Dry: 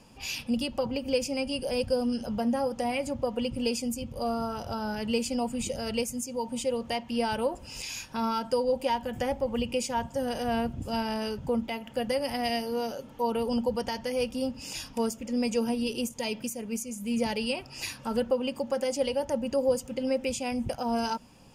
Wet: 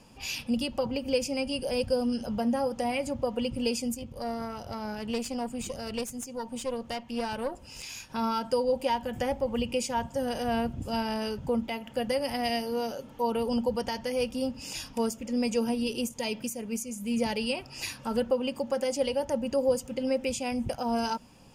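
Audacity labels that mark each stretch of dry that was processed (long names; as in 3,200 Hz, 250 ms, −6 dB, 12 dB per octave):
3.940000	8.100000	tube saturation drive 23 dB, bias 0.7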